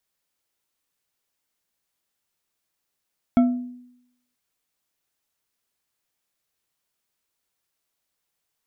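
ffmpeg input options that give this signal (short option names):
-f lavfi -i "aevalsrc='0.282*pow(10,-3*t/0.8)*sin(2*PI*247*t)+0.1*pow(10,-3*t/0.393)*sin(2*PI*681*t)+0.0355*pow(10,-3*t/0.246)*sin(2*PI*1334.8*t)+0.0126*pow(10,-3*t/0.173)*sin(2*PI*2206.5*t)+0.00447*pow(10,-3*t/0.13)*sin(2*PI*3295*t)':d=0.98:s=44100"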